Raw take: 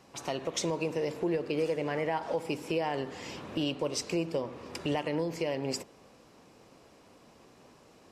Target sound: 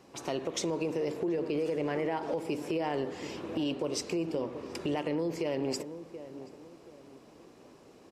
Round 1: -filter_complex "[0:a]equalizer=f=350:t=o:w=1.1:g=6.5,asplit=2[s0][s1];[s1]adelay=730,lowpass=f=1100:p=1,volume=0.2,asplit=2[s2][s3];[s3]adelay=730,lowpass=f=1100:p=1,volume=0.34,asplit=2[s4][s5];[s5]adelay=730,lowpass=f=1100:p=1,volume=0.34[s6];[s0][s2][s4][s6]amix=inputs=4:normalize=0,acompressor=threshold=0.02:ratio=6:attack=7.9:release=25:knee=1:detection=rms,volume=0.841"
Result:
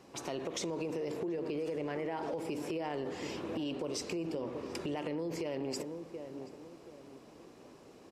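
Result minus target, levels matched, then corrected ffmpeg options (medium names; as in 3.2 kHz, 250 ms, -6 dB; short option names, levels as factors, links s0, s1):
compression: peak gain reduction +5.5 dB
-filter_complex "[0:a]equalizer=f=350:t=o:w=1.1:g=6.5,asplit=2[s0][s1];[s1]adelay=730,lowpass=f=1100:p=1,volume=0.2,asplit=2[s2][s3];[s3]adelay=730,lowpass=f=1100:p=1,volume=0.34,asplit=2[s4][s5];[s5]adelay=730,lowpass=f=1100:p=1,volume=0.34[s6];[s0][s2][s4][s6]amix=inputs=4:normalize=0,acompressor=threshold=0.0422:ratio=6:attack=7.9:release=25:knee=1:detection=rms,volume=0.841"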